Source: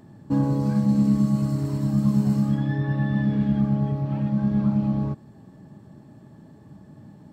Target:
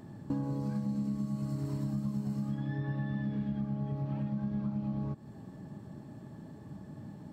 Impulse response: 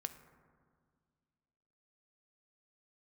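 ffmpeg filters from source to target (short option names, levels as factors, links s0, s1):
-af "acompressor=threshold=0.0251:ratio=6"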